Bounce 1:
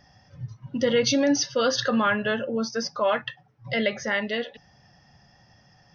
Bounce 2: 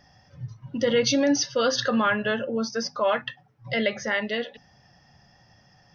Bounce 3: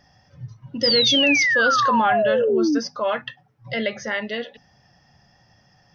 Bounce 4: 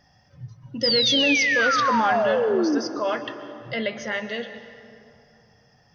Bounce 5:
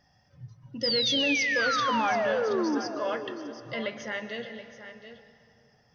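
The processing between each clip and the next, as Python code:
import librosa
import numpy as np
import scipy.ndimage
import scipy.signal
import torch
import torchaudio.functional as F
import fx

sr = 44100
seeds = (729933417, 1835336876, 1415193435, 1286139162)

y1 = fx.hum_notches(x, sr, base_hz=50, count=5)
y2 = fx.spec_paint(y1, sr, seeds[0], shape='fall', start_s=0.83, length_s=1.96, low_hz=270.0, high_hz=5200.0, level_db=-19.0)
y3 = fx.rev_plate(y2, sr, seeds[1], rt60_s=2.7, hf_ratio=0.6, predelay_ms=110, drr_db=10.5)
y3 = y3 * librosa.db_to_amplitude(-2.5)
y4 = y3 + 10.0 ** (-12.0 / 20.0) * np.pad(y3, (int(726 * sr / 1000.0), 0))[:len(y3)]
y4 = y4 * librosa.db_to_amplitude(-6.0)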